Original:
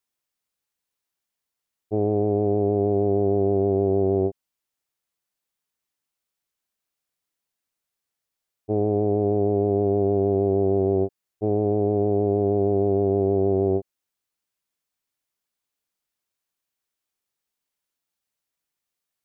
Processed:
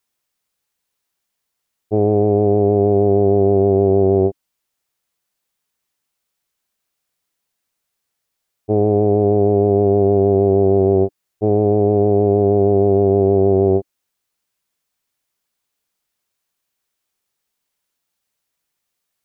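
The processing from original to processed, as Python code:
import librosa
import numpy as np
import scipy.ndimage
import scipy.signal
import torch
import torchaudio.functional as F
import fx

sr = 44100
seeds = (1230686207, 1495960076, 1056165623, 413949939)

y = fx.peak_eq(x, sr, hz=300.0, db=-2.5, octaves=0.22)
y = y * librosa.db_to_amplitude(7.5)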